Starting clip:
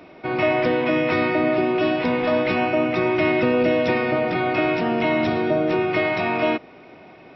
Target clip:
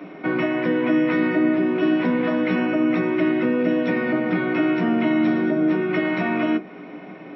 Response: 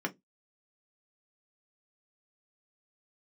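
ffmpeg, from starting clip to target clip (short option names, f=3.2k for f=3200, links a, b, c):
-filter_complex "[0:a]acompressor=threshold=-25dB:ratio=6[a];[1:a]atrim=start_sample=2205[b];[a][b]afir=irnorm=-1:irlink=0"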